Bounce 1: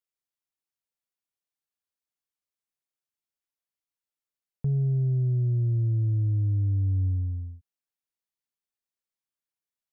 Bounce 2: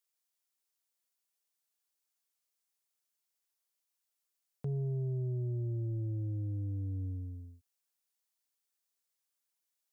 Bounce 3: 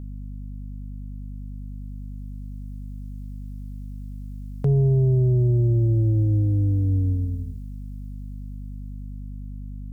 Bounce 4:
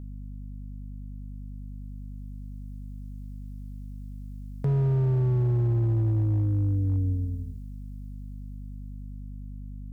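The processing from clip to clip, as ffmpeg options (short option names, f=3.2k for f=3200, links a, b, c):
-af "highpass=87,bass=f=250:g=-12,treble=f=4k:g=7,volume=1.5dB"
-af "dynaudnorm=f=540:g=9:m=10dB,aeval=exprs='val(0)+0.0112*(sin(2*PI*50*n/s)+sin(2*PI*2*50*n/s)/2+sin(2*PI*3*50*n/s)/3+sin(2*PI*4*50*n/s)/4+sin(2*PI*5*50*n/s)/5)':c=same,volume=6dB"
-af "asoftclip=type=hard:threshold=-15dB,volume=-4dB"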